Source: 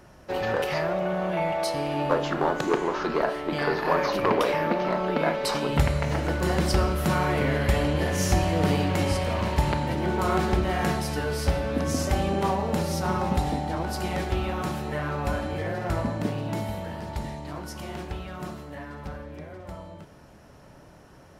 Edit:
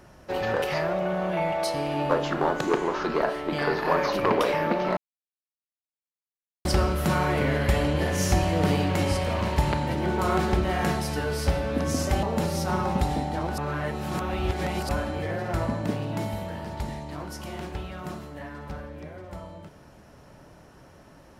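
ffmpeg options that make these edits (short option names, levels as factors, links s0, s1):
-filter_complex "[0:a]asplit=6[s0][s1][s2][s3][s4][s5];[s0]atrim=end=4.97,asetpts=PTS-STARTPTS,afade=t=out:st=4.966:d=0.004:c=hsin[s6];[s1]atrim=start=4.97:end=6.65,asetpts=PTS-STARTPTS,volume=0[s7];[s2]atrim=start=6.65:end=12.232,asetpts=PTS-STARTPTS,afade=t=in:d=0.004:c=hsin[s8];[s3]atrim=start=12.588:end=13.942[s9];[s4]atrim=start=13.938:end=15.252,asetpts=PTS-STARTPTS,areverse[s10];[s5]atrim=start=15.248[s11];[s6][s7][s8]concat=n=3:v=0:a=1[s12];[s12][s9]acrossfade=d=0.004:c1=hsin:c2=hsin[s13];[s13][s10]acrossfade=d=0.004:c1=hsin:c2=hsin[s14];[s14][s11]acrossfade=d=0.004:c1=hsin:c2=hsin"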